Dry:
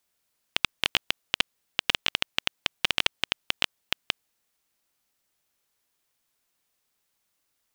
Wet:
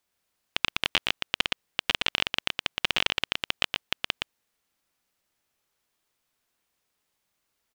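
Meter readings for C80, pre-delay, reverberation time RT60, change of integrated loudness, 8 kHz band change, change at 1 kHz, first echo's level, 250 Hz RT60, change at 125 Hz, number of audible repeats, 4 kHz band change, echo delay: no reverb, no reverb, no reverb, 0.0 dB, -2.5 dB, +1.5 dB, -3.5 dB, no reverb, +1.5 dB, 1, 0.0 dB, 118 ms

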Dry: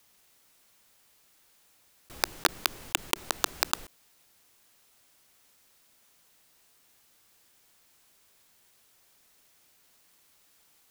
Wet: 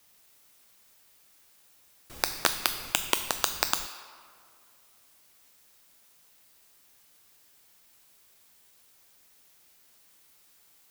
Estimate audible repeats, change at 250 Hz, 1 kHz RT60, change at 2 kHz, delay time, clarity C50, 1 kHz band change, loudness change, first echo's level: no echo, 0.0 dB, 2.2 s, +0.5 dB, no echo, 10.5 dB, +0.5 dB, +1.5 dB, no echo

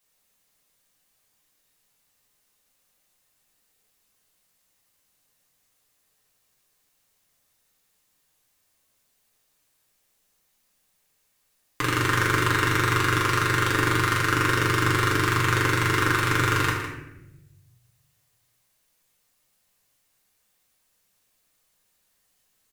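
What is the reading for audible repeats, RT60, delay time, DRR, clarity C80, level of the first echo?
1, 0.95 s, 157 ms, -5.5 dB, 4.5 dB, -9.0 dB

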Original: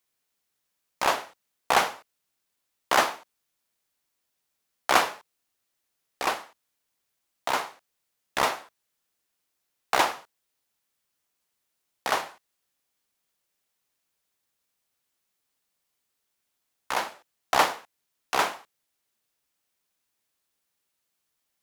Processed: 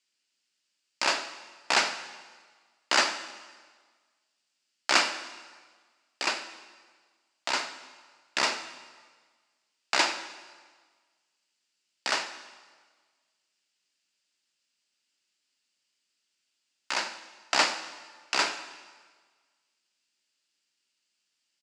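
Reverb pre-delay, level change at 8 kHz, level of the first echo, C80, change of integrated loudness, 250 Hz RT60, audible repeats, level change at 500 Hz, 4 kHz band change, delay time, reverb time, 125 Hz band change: 5 ms, +2.0 dB, -19.0 dB, 12.5 dB, -1.5 dB, 1.5 s, 1, -5.5 dB, +3.5 dB, 93 ms, 1.5 s, no reading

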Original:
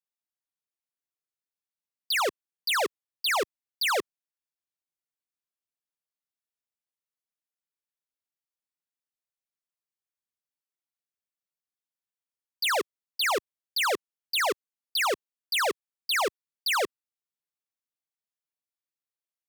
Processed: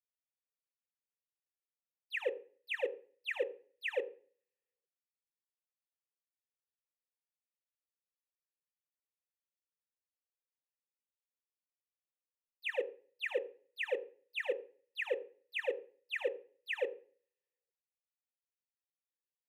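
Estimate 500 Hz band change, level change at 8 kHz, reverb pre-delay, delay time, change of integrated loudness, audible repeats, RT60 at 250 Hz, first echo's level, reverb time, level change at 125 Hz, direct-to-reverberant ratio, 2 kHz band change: -5.0 dB, under -30 dB, 3 ms, no echo, -11.5 dB, no echo, 0.70 s, no echo, 0.40 s, no reading, 9.0 dB, -10.5 dB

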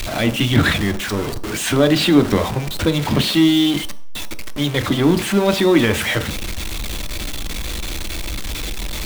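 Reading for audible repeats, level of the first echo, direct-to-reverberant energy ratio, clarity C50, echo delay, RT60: no echo, no echo, 8.5 dB, 15.5 dB, no echo, 0.55 s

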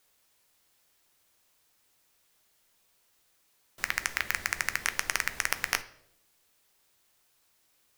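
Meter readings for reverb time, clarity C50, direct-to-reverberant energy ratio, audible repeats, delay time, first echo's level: 0.75 s, 16.5 dB, 11.0 dB, no echo, no echo, no echo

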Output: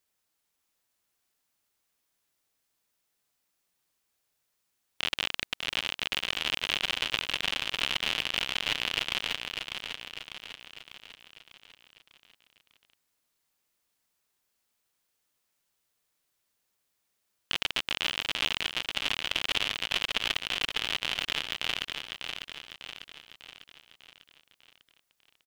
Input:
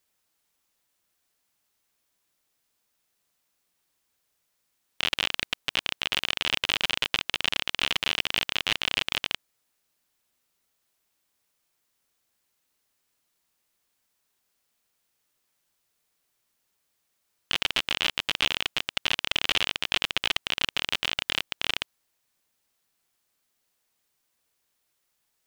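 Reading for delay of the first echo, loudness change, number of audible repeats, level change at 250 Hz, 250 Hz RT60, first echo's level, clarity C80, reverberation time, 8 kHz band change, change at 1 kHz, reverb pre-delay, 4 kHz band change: 598 ms, -3.5 dB, 6, -2.5 dB, no reverb, -6.0 dB, no reverb, no reverb, -2.5 dB, -3.0 dB, no reverb, -2.5 dB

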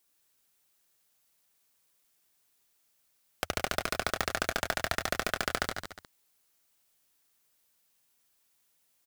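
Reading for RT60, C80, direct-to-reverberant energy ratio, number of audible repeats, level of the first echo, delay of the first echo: no reverb, no reverb, no reverb, 4, -16.5 dB, 103 ms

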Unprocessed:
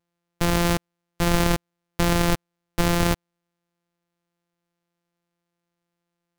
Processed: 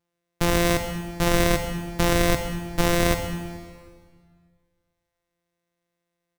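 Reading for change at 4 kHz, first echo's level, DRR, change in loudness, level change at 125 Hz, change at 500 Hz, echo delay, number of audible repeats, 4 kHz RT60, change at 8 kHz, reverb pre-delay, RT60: +0.5 dB, -16.5 dB, 5.0 dB, 0.0 dB, -1.0 dB, +3.0 dB, 134 ms, 1, 1.6 s, +1.0 dB, 10 ms, 1.8 s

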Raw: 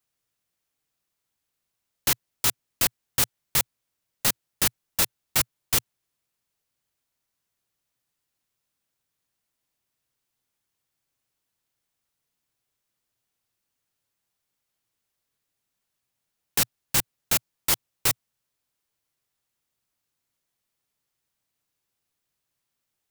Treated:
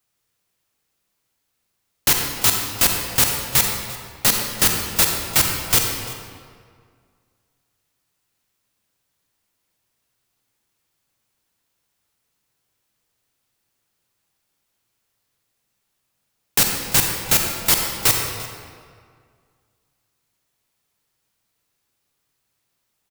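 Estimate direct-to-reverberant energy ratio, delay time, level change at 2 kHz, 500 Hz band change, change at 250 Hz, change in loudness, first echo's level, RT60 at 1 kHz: 2.0 dB, 345 ms, +8.0 dB, +8.5 dB, +8.5 dB, +7.0 dB, -19.0 dB, 1.9 s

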